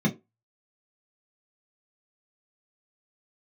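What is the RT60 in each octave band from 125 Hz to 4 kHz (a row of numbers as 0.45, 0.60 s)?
0.20, 0.20, 0.25, 0.20, 0.15, 0.15 s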